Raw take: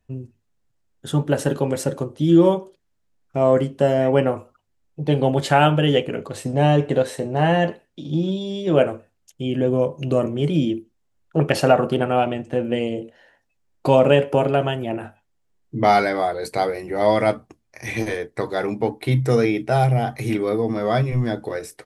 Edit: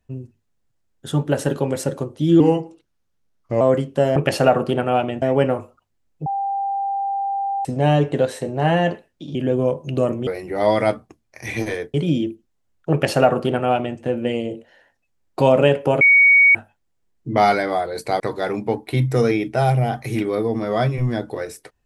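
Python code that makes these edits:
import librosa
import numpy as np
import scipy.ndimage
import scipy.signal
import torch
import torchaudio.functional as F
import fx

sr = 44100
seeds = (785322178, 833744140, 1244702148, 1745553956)

y = fx.edit(x, sr, fx.speed_span(start_s=2.4, length_s=1.04, speed=0.86),
    fx.bleep(start_s=5.03, length_s=1.39, hz=792.0, db=-20.0),
    fx.cut(start_s=8.12, length_s=1.37),
    fx.duplicate(start_s=11.39, length_s=1.06, to_s=3.99),
    fx.bleep(start_s=14.48, length_s=0.54, hz=2240.0, db=-8.5),
    fx.move(start_s=16.67, length_s=1.67, to_s=10.41), tone=tone)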